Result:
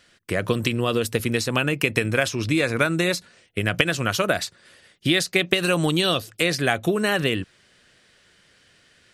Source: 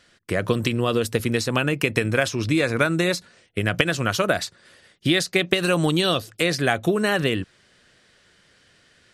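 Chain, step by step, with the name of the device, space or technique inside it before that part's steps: presence and air boost (bell 2600 Hz +2.5 dB; high shelf 9800 Hz +5.5 dB); gain -1 dB

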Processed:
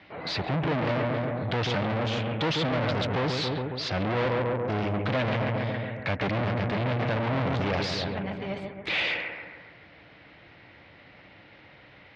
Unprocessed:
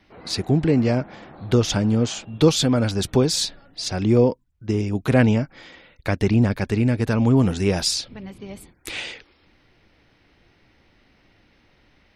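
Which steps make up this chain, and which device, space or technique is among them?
analogue delay pedal into a guitar amplifier (analogue delay 0.138 s, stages 2048, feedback 55%, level -6 dB; tube stage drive 31 dB, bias 0.35; speaker cabinet 110–4000 Hz, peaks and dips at 230 Hz -8 dB, 380 Hz -6 dB, 610 Hz +3 dB, 2100 Hz +3 dB); gain +8 dB

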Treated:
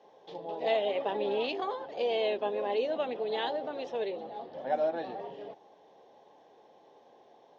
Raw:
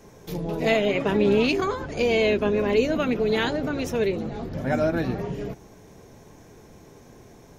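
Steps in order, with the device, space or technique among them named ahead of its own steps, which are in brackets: phone earpiece (speaker cabinet 460–4100 Hz, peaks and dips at 540 Hz +6 dB, 800 Hz +10 dB, 1400 Hz -9 dB, 2300 Hz -9 dB, 3300 Hz +5 dB); gain -8 dB

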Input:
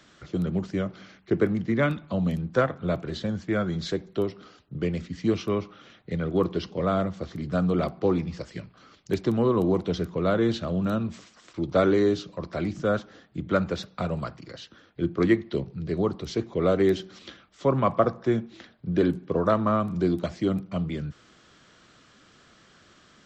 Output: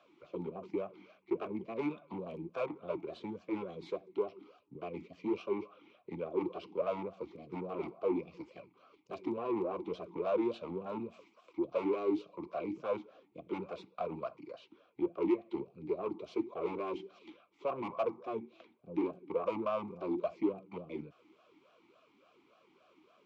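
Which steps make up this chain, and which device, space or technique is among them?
talk box (tube stage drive 27 dB, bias 0.55; vowel sweep a-u 3.5 Hz); gain +6 dB

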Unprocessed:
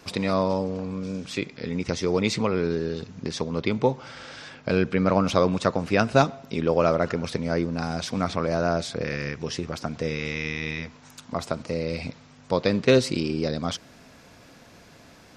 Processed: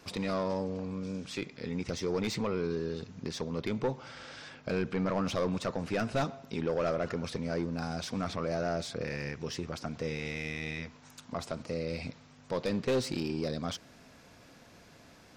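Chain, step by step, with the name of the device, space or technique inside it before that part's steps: saturation between pre-emphasis and de-emphasis (high shelf 2300 Hz +10.5 dB; soft clip -17.5 dBFS, distortion -9 dB; high shelf 2300 Hz -10.5 dB); gain -5.5 dB

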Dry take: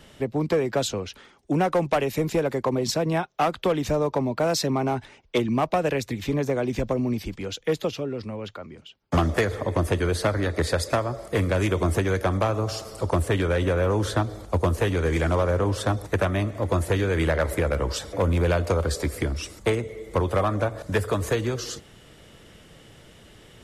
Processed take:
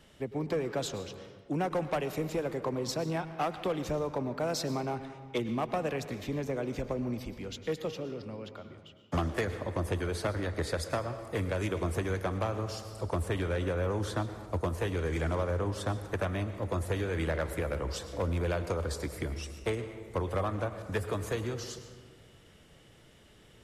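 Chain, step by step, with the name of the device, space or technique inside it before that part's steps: saturated reverb return (on a send at -8 dB: reverb RT60 1.4 s, pre-delay 96 ms + soft clip -22 dBFS, distortion -11 dB); on the sum: gain -9 dB

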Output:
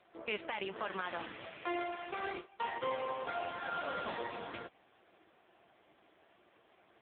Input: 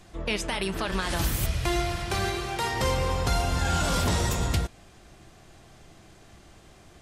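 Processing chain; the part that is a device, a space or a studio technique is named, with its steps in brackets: 2.11–3.05 gate with hold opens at -18 dBFS; telephone (BPF 370–3500 Hz; gain -5.5 dB; AMR-NB 5.9 kbps 8000 Hz)

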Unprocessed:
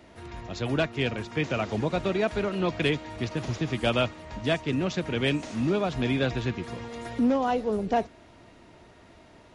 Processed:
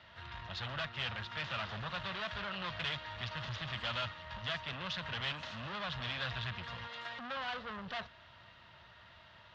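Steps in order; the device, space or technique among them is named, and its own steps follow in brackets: 6.87–7.37 HPF 260 Hz 12 dB/oct; scooped metal amplifier (tube stage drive 33 dB, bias 0.5; speaker cabinet 100–3500 Hz, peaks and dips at 430 Hz -7 dB, 750 Hz -6 dB, 2300 Hz -10 dB; passive tone stack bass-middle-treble 10-0-10); gain +11 dB

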